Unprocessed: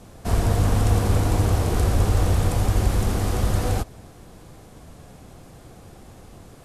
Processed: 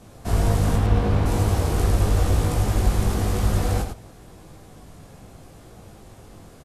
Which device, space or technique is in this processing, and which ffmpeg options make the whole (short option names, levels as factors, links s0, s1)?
slapback doubling: -filter_complex "[0:a]asettb=1/sr,asplit=3[s0][s1][s2];[s0]atrim=end=0.764[s3];[s1]atrim=start=0.76:end=1.26,asetpts=PTS-STARTPTS,afade=t=in:d=0.004:c=qsin,afade=t=out:st=0.496:d=0.004:c=qsin,acrossover=split=4200[s4][s5];[s5]acompressor=threshold=0.00178:ratio=4:attack=1:release=60[s6];[s4][s6]amix=inputs=2:normalize=0[s7];[s2]atrim=start=1.256[s8];[s3][s7]acrossfade=d=0.004:c1=hsin:c2=qsin[s9];[s9][s8]acrossfade=d=0.004:c1=qsin:c2=hsin,asplit=3[s10][s11][s12];[s11]adelay=19,volume=0.668[s13];[s12]adelay=103,volume=0.531[s14];[s10][s13][s14]amix=inputs=3:normalize=0,volume=0.75"